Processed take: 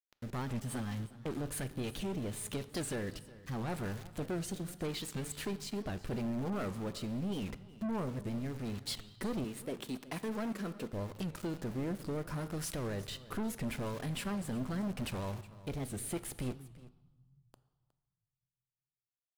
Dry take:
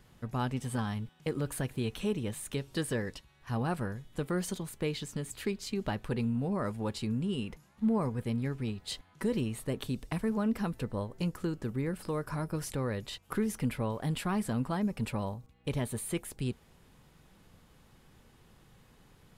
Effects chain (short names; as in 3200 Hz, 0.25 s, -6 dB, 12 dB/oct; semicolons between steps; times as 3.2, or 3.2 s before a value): 9.44–10.93 HPF 250 Hz 12 dB/oct; in parallel at -2 dB: compressor, threshold -43 dBFS, peak gain reduction 17 dB; on the sum: sample gate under -42.5 dBFS; rotary speaker horn 5 Hz, later 0.8 Hz, at 1.31; soft clip -33.5 dBFS, distortion -9 dB; echo 0.363 s -19 dB; on a send at -13 dB: reverb RT60 1.3 s, pre-delay 3 ms; on the sum: record warp 78 rpm, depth 160 cents; gain +1 dB